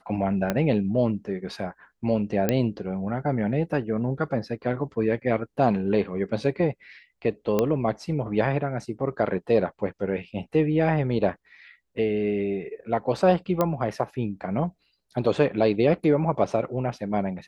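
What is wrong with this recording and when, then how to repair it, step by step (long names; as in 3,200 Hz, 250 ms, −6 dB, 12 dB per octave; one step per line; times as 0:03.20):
0:00.50: click −10 dBFS
0:02.49: click −8 dBFS
0:07.59: click −10 dBFS
0:13.61: click −10 dBFS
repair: click removal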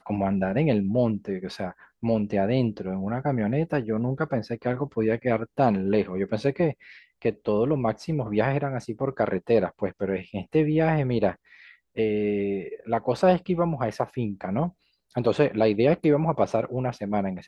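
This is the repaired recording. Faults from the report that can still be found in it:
0:00.50: click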